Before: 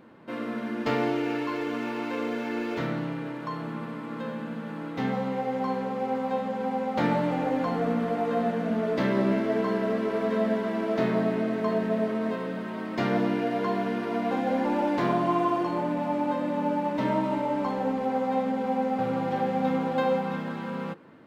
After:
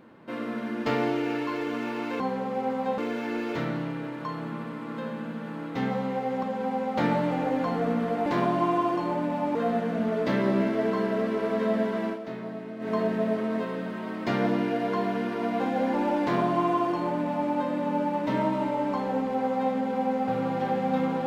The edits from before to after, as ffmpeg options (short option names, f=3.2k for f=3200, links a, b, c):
-filter_complex "[0:a]asplit=8[a][b][c][d][e][f][g][h];[a]atrim=end=2.202[i];[b]atrim=start=5.648:end=6.432[j];[c]atrim=start=2.198:end=5.652[k];[d]atrim=start=6.428:end=8.262[l];[e]atrim=start=14.928:end=16.222[m];[f]atrim=start=8.258:end=10.9,asetpts=PTS-STARTPTS,afade=t=out:st=2.482:d=0.16:c=qsin:silence=0.281838[n];[g]atrim=start=10.9:end=11.5,asetpts=PTS-STARTPTS,volume=-11dB[o];[h]atrim=start=11.5,asetpts=PTS-STARTPTS,afade=t=in:d=0.16:c=qsin:silence=0.281838[p];[i][j]acrossfade=d=0.004:c1=hsin:c2=hsin[q];[q][k]acrossfade=d=0.004:c1=hsin:c2=hsin[r];[r][l]acrossfade=d=0.004:c1=hsin:c2=hsin[s];[s][m]acrossfade=d=0.004:c1=hsin:c2=hsin[t];[n][o][p]concat=n=3:v=0:a=1[u];[t][u]acrossfade=d=0.004:c1=hsin:c2=hsin"